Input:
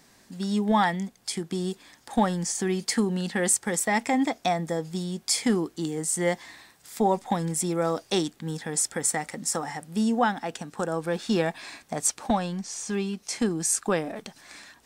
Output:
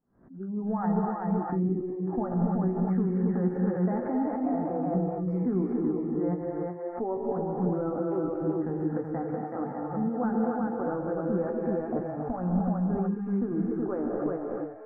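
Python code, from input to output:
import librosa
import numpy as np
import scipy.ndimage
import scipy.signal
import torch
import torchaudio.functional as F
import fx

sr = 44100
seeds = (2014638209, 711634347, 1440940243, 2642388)

p1 = scipy.signal.sosfilt(scipy.signal.ellip(4, 1.0, 60, 1400.0, 'lowpass', fs=sr, output='sos'), x)
p2 = fx.doubler(p1, sr, ms=16.0, db=-8.5)
p3 = p2 + 10.0 ** (-4.5 / 20.0) * np.pad(p2, (int(377 * sr / 1000.0), 0))[:len(p2)]
p4 = fx.over_compress(p3, sr, threshold_db=-29.0, ratio=-0.5)
p5 = p3 + (p4 * librosa.db_to_amplitude(-2.0))
p6 = fx.rev_gated(p5, sr, seeds[0], gate_ms=310, shape='rising', drr_db=0.5)
p7 = fx.noise_reduce_blind(p6, sr, reduce_db=23)
p8 = fx.peak_eq(p7, sr, hz=1100.0, db=-10.0, octaves=2.3)
p9 = fx.pre_swell(p8, sr, db_per_s=120.0)
y = p9 * librosa.db_to_amplitude(-4.0)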